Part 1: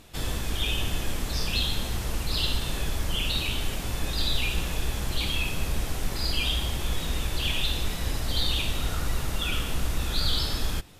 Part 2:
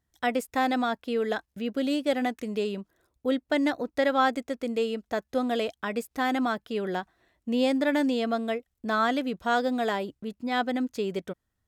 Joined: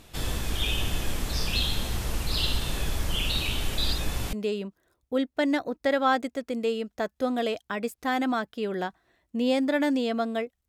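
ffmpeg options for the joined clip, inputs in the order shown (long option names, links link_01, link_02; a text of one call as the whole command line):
ffmpeg -i cue0.wav -i cue1.wav -filter_complex "[0:a]apad=whole_dur=10.68,atrim=end=10.68,asplit=2[link_01][link_02];[link_01]atrim=end=3.782[link_03];[link_02]atrim=start=3.778:end=4.332,asetpts=PTS-STARTPTS,areverse[link_04];[1:a]atrim=start=2.458:end=8.81[link_05];[link_03][link_04]acrossfade=duration=0.004:curve1=hsin:curve2=hsin[link_06];[link_06][link_05]acrossfade=duration=0.004:curve1=hsin:curve2=hsin" out.wav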